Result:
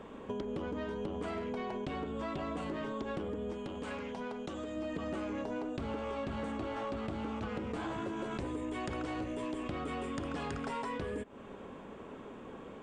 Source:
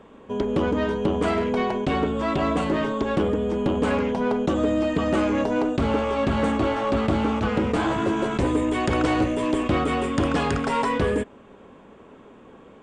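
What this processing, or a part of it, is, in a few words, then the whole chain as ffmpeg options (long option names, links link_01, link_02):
serial compression, peaks first: -filter_complex "[0:a]acompressor=threshold=-32dB:ratio=6,acompressor=threshold=-38dB:ratio=2,asettb=1/sr,asplit=3[link_01][link_02][link_03];[link_01]atrim=end=3.524[link_04];[link_02]atrim=start=3.52:end=4.76,asetpts=PTS-STARTPTS,afade=type=in:duration=0.004:curve=qsin,afade=type=out:start_time=1.236:duration=0.004:curve=qsin,tiltshelf=frequency=1200:gain=-4[link_05];[link_03]atrim=start=4.756[link_06];[link_04][link_05]acrossfade=duration=0.004:curve1=hsin:curve2=qsin[link_07];[link_07][link_06]acrossfade=duration=0.004:curve1=qsin:curve2=hsin"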